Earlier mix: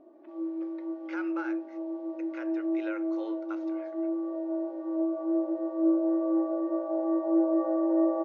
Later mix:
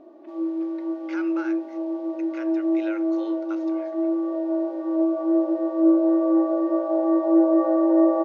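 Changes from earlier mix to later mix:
background +7.0 dB
master: add high-shelf EQ 2,900 Hz +11 dB

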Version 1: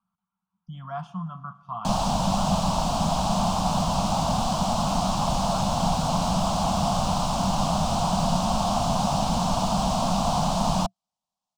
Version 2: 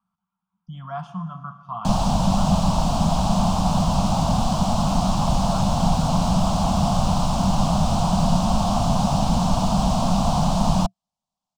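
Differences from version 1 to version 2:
speech: send +8.0 dB
background: add low-shelf EQ 270 Hz +8 dB

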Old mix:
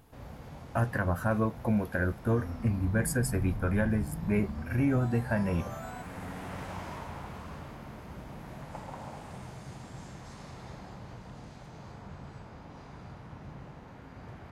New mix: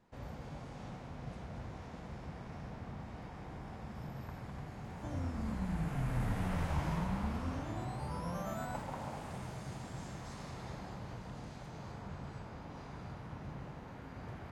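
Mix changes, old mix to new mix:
speech: muted
second sound: entry +2.75 s

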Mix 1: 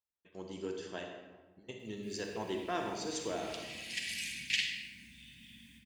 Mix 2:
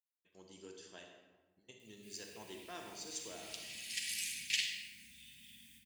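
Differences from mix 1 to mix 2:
background +4.5 dB
master: add first-order pre-emphasis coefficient 0.8

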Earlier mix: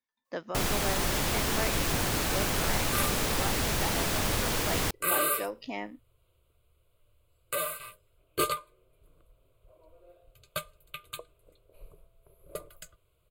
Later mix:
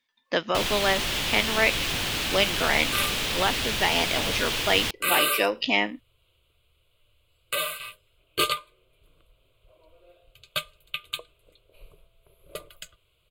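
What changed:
speech +9.5 dB
first sound −3.5 dB
master: add parametric band 3,100 Hz +13 dB 1.3 octaves

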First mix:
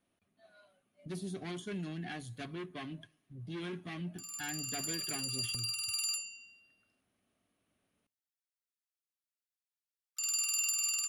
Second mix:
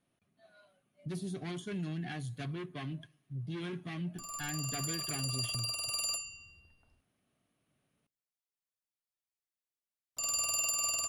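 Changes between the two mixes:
background: remove linear-phase brick-wall high-pass 1,200 Hz
master: add parametric band 140 Hz +14.5 dB 0.26 octaves

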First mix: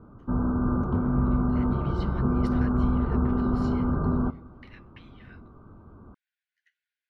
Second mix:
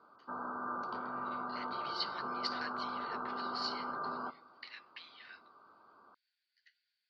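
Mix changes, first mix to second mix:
background: add high-pass filter 920 Hz 12 dB per octave
master: add low-pass with resonance 4,600 Hz, resonance Q 14

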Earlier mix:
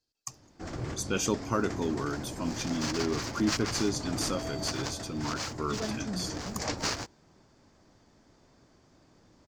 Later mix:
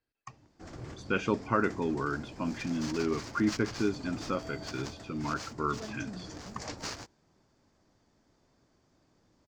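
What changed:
speech: add low-pass with resonance 2,000 Hz, resonance Q 2.2
background −7.5 dB

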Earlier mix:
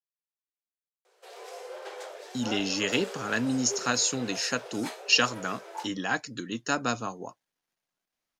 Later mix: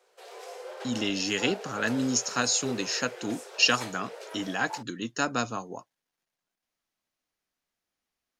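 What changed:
speech: entry −1.50 s
background: entry −1.05 s

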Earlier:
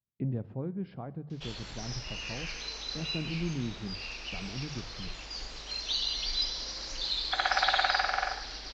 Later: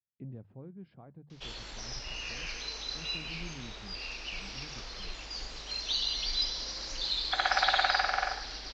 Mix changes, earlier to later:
speech −11.0 dB
reverb: off

